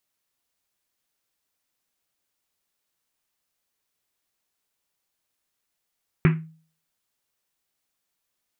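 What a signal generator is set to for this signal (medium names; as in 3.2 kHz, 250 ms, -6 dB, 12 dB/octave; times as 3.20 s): Risset drum, pitch 160 Hz, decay 0.45 s, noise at 1.8 kHz, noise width 1.5 kHz, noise 15%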